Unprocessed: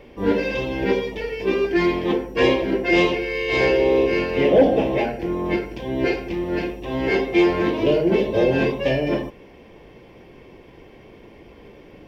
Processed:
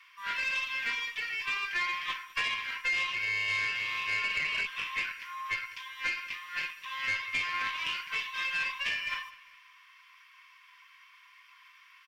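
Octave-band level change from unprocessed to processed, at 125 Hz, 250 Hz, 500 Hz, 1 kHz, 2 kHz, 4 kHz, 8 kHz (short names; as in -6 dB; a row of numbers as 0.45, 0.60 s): -28.0 dB, -39.0 dB, -38.0 dB, -9.5 dB, -3.0 dB, -3.0 dB, n/a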